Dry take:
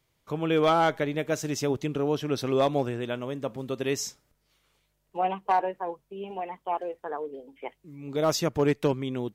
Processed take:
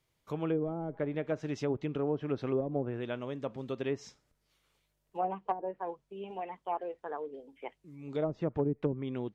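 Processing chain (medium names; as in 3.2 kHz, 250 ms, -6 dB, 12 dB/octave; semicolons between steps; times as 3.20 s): low-pass that closes with the level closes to 340 Hz, closed at -19 dBFS; trim -5 dB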